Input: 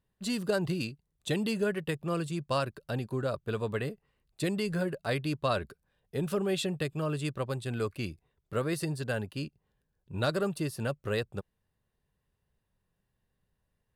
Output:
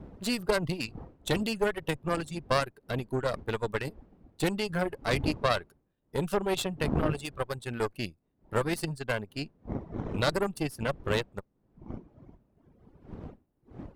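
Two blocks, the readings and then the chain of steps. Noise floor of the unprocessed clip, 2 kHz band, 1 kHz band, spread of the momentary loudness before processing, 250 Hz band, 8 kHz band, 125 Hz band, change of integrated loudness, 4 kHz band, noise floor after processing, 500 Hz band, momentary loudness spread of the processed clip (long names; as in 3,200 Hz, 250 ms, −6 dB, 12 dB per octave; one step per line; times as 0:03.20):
−81 dBFS, +3.5 dB, +4.5 dB, 9 LU, +0.5 dB, +2.0 dB, −0.5 dB, +1.5 dB, +3.0 dB, −75 dBFS, +1.5 dB, 13 LU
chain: gain on one half-wave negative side −3 dB
wind on the microphone 290 Hz −42 dBFS
reverb reduction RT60 1.9 s
in parallel at −2 dB: brickwall limiter −27.5 dBFS, peak gain reduction 10.5 dB
on the sum: harmonic generator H 2 −7 dB, 7 −24 dB, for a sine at −15 dBFS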